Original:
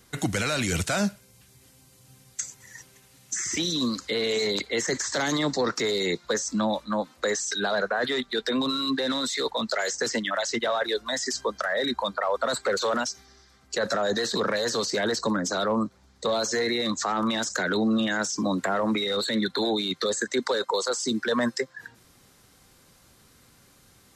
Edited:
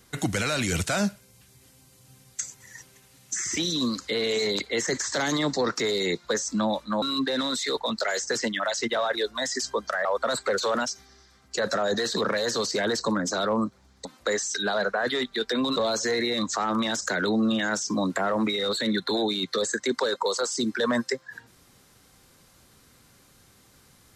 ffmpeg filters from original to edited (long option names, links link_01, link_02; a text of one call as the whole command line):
ffmpeg -i in.wav -filter_complex "[0:a]asplit=5[link_01][link_02][link_03][link_04][link_05];[link_01]atrim=end=7.022[link_06];[link_02]atrim=start=8.728:end=11.762[link_07];[link_03]atrim=start=12.238:end=16.242[link_08];[link_04]atrim=start=7.018:end=8.732[link_09];[link_05]atrim=start=16.238[link_10];[link_06][link_07]acrossfade=duration=0.004:curve1=hsin:curve2=hsin[link_11];[link_11][link_08]acrossfade=duration=0.004:curve1=hsin:curve2=hsin[link_12];[link_12][link_09]acrossfade=duration=0.004:curve1=hsin:curve2=hsin[link_13];[link_13][link_10]acrossfade=duration=0.004:curve1=hsin:curve2=hsin" out.wav